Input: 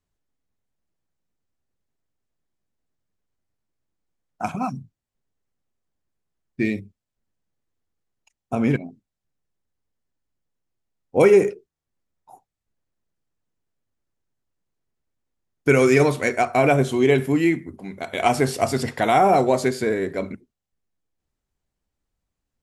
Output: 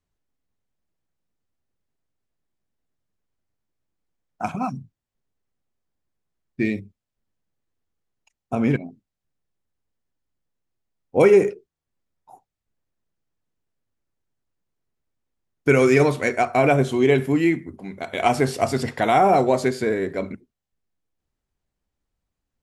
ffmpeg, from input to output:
-af "highshelf=f=7.1k:g=-5.5"

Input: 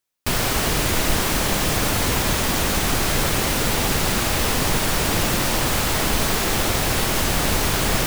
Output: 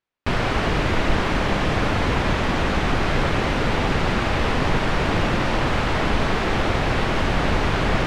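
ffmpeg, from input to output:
-af "lowpass=2.6k,volume=1.5dB"

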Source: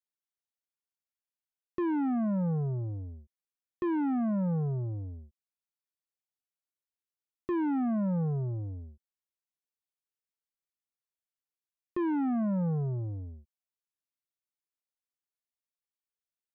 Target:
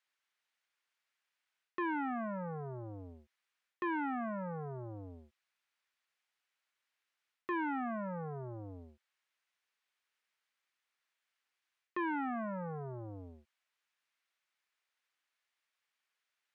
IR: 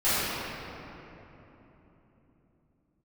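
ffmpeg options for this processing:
-af "areverse,acompressor=threshold=-38dB:ratio=10,areverse,bandpass=f=1.9k:t=q:w=1.1:csg=0,volume=17dB"

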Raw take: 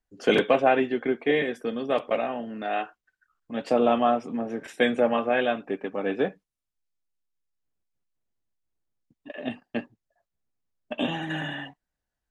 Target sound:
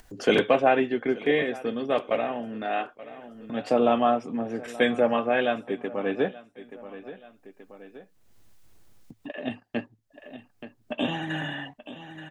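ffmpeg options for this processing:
-af "equalizer=f=110:w=7.1:g=6,aecho=1:1:879|1758:0.1|0.023,acompressor=mode=upward:threshold=-32dB:ratio=2.5"

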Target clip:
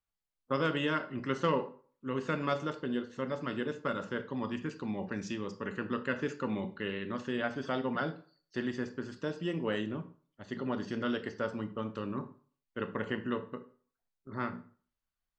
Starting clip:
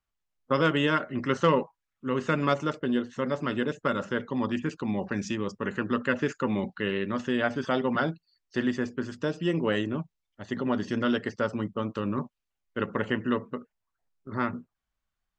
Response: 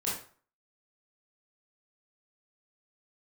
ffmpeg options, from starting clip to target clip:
-filter_complex "[0:a]asplit=2[a][b];[b]equalizer=f=4.5k:w=2.6:g=12.5[c];[1:a]atrim=start_sample=2205,highshelf=f=4.8k:g=-8[d];[c][d]afir=irnorm=-1:irlink=0,volume=-13.5dB[e];[a][e]amix=inputs=2:normalize=0,volume=-8dB"

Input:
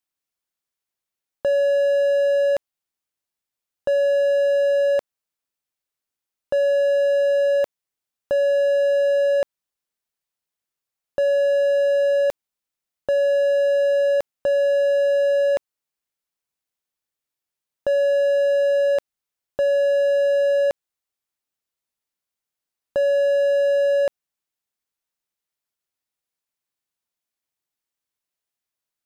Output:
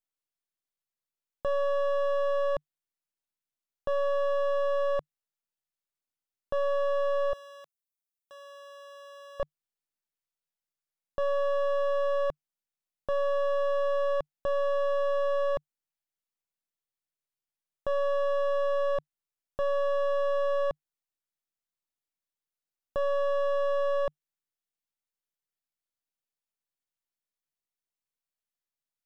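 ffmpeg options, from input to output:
-filter_complex "[0:a]aeval=exprs='if(lt(val(0),0),0.251*val(0),val(0))':c=same,equalizer=f=150:t=o:w=0.26:g=5,acrossover=split=4700[a][b];[b]acompressor=threshold=-59dB:ratio=4:attack=1:release=60[c];[a][c]amix=inputs=2:normalize=0,asettb=1/sr,asplit=3[d][e][f];[d]atrim=end=7.334[g];[e]atrim=start=7.33:end=9.4,asetpts=PTS-STARTPTS,afade=t=in:d=0.004:c=qsin,afade=t=out:st=2.066:d=0.004:c=qsin,aderivative[h];[f]atrim=start=9.396[i];[g][h]acrossfade=d=0.004:c1=hsin:c2=qsin[j];[j][i]acrossfade=d=0.004:c1=qsin:c2=hsin,volume=-5.5dB"

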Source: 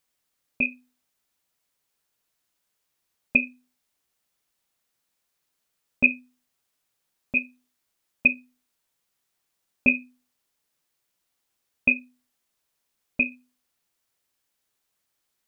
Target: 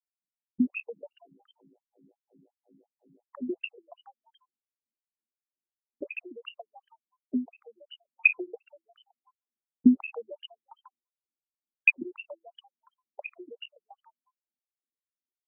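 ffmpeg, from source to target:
-filter_complex "[0:a]asettb=1/sr,asplit=3[a][b][c];[a]atrim=end=0.684[d];[b]atrim=start=0.68:end=3.37,asetpts=PTS-STARTPTS,afade=t=in:d=0.004:c=qsin,afade=t=out:st=2.686:d=0.004:c=qsin,aeval=exprs='val(0)+0.00224*(sin(2*PI*50*n/s)+sin(2*PI*2*50*n/s)/2+sin(2*PI*3*50*n/s)/3+sin(2*PI*4*50*n/s)/4+sin(2*PI*5*50*n/s)/5)':c=same[e];[c]atrim=start=3.366[f];[d][e]acrossfade=d=0.004:c1=hsin:c2=qsin[g];[g][f]acrossfade=d=0.004:c1=qsin:c2=hsin,aecho=1:1:1:0.66,anlmdn=1.58,asplit=8[h][i][j][k][l][m][n][o];[i]adelay=142,afreqshift=110,volume=-11dB[p];[j]adelay=284,afreqshift=220,volume=-15.4dB[q];[k]adelay=426,afreqshift=330,volume=-19.9dB[r];[l]adelay=568,afreqshift=440,volume=-24.3dB[s];[m]adelay=710,afreqshift=550,volume=-28.7dB[t];[n]adelay=852,afreqshift=660,volume=-33.2dB[u];[o]adelay=994,afreqshift=770,volume=-37.6dB[v];[h][p][q][r][s][t][u][v]amix=inputs=8:normalize=0,afftfilt=real='re*between(b*sr/1024,240*pow(2300/240,0.5+0.5*sin(2*PI*2.8*pts/sr))/1.41,240*pow(2300/240,0.5+0.5*sin(2*PI*2.8*pts/sr))*1.41)':imag='im*between(b*sr/1024,240*pow(2300/240,0.5+0.5*sin(2*PI*2.8*pts/sr))/1.41,240*pow(2300/240,0.5+0.5*sin(2*PI*2.8*pts/sr))*1.41)':win_size=1024:overlap=0.75,volume=7.5dB"

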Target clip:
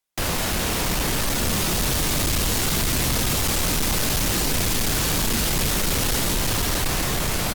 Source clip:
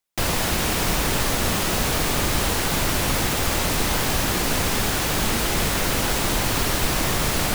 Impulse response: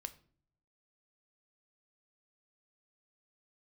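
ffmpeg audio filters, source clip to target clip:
-filter_complex "[0:a]dynaudnorm=f=260:g=11:m=10dB,aecho=1:1:142:0.0841,acrossover=split=330|3000[a][b][c];[b]acompressor=threshold=-24dB:ratio=6[d];[a][d][c]amix=inputs=3:normalize=0,asplit=2[e][f];[1:a]atrim=start_sample=2205,adelay=28[g];[f][g]afir=irnorm=-1:irlink=0,volume=-7.5dB[h];[e][h]amix=inputs=2:normalize=0,asoftclip=type=hard:threshold=-19.5dB" -ar 44100 -c:a aac -b:a 96k

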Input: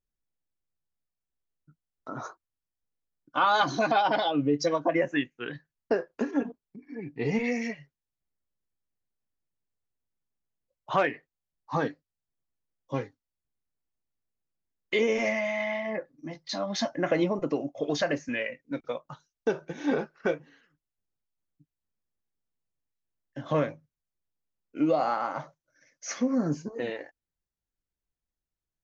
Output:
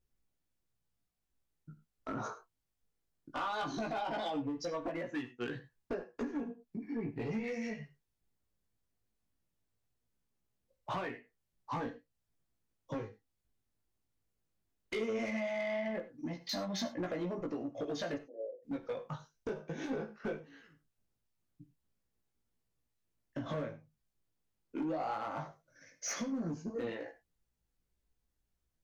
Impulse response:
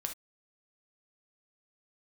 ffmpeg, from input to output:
-filter_complex "[0:a]lowshelf=f=460:g=6,acompressor=threshold=-37dB:ratio=5,asoftclip=type=hard:threshold=-32dB,flanger=delay=16.5:depth=2.5:speed=0.18,asoftclip=type=tanh:threshold=-35dB,asplit=3[a][b][c];[a]afade=t=out:st=18.17:d=0.02[d];[b]asuperpass=centerf=490:order=8:qfactor=1.5,afade=t=in:st=18.17:d=0.02,afade=t=out:st=18.62:d=0.02[e];[c]afade=t=in:st=18.62:d=0.02[f];[d][e][f]amix=inputs=3:normalize=0,asplit=2[g][h];[1:a]atrim=start_sample=2205,atrim=end_sample=3528,asetrate=31752,aresample=44100[i];[h][i]afir=irnorm=-1:irlink=0,volume=-4dB[j];[g][j]amix=inputs=2:normalize=0,volume=1.5dB"

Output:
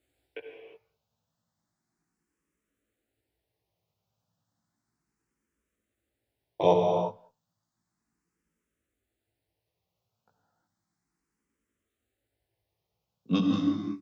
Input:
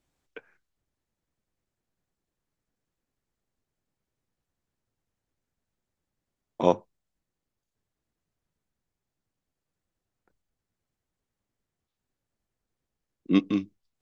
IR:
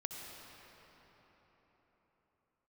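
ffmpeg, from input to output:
-filter_complex "[0:a]highpass=61,asplit=2[a][b];[b]alimiter=limit=-13dB:level=0:latency=1,volume=0dB[c];[a][c]amix=inputs=2:normalize=0,asplit=2[d][e];[e]adelay=18,volume=-3dB[f];[d][f]amix=inputs=2:normalize=0,asplit=2[g][h];[h]adelay=200,highpass=300,lowpass=3.4k,asoftclip=type=hard:threshold=-11dB,volume=-27dB[i];[g][i]amix=inputs=2:normalize=0[j];[1:a]atrim=start_sample=2205,afade=t=out:st=0.42:d=0.01,atrim=end_sample=18963[k];[j][k]afir=irnorm=-1:irlink=0,asplit=2[l][m];[m]afreqshift=0.33[n];[l][n]amix=inputs=2:normalize=1"

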